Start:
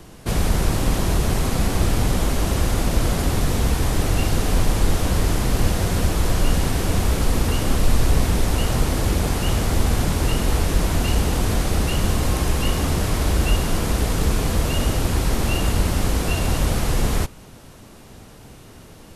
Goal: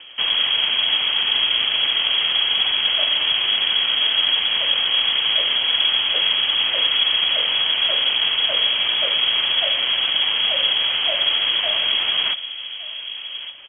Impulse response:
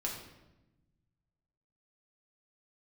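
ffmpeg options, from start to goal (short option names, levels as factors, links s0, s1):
-filter_complex "[0:a]highpass=f=76:w=0.5412,highpass=f=76:w=1.3066,aeval=exprs='val(0)+0.00178*(sin(2*PI*50*n/s)+sin(2*PI*2*50*n/s)/2+sin(2*PI*3*50*n/s)/3+sin(2*PI*4*50*n/s)/4+sin(2*PI*5*50*n/s)/5)':c=same,atempo=1.4,asplit=2[s0][s1];[s1]adelay=1166,volume=0.282,highshelf=f=4000:g=-26.2[s2];[s0][s2]amix=inputs=2:normalize=0,lowpass=f=2900:t=q:w=0.5098,lowpass=f=2900:t=q:w=0.6013,lowpass=f=2900:t=q:w=0.9,lowpass=f=2900:t=q:w=2.563,afreqshift=-3400,volume=1.58"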